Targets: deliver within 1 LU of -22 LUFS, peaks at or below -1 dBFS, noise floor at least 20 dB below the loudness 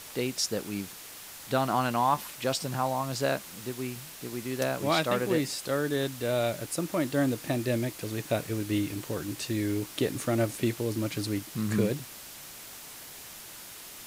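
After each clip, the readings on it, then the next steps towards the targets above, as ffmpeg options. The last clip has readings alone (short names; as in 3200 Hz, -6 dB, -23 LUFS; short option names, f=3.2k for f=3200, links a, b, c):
noise floor -45 dBFS; noise floor target -50 dBFS; loudness -30.0 LUFS; peak -13.0 dBFS; loudness target -22.0 LUFS
-> -af "afftdn=nr=6:nf=-45"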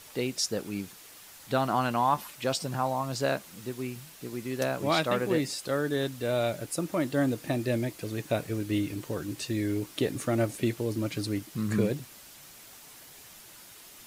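noise floor -51 dBFS; loudness -30.5 LUFS; peak -13.0 dBFS; loudness target -22.0 LUFS
-> -af "volume=8.5dB"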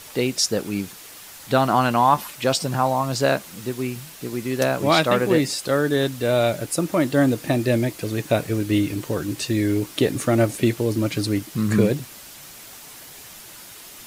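loudness -22.0 LUFS; peak -4.5 dBFS; noise floor -42 dBFS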